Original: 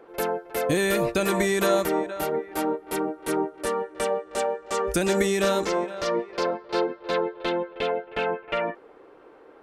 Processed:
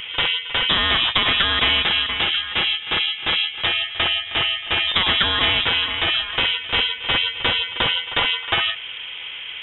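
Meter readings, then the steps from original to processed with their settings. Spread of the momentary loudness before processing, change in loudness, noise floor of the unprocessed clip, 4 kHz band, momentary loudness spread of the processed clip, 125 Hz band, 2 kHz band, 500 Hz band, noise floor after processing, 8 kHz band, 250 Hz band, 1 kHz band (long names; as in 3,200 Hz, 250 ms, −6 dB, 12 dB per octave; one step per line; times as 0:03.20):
6 LU, +7.5 dB, −51 dBFS, +21.0 dB, 4 LU, +2.0 dB, +11.5 dB, −10.0 dB, −33 dBFS, below −40 dB, −7.0 dB, +2.5 dB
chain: voice inversion scrambler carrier 3,600 Hz
every bin compressed towards the loudest bin 2 to 1
level +7 dB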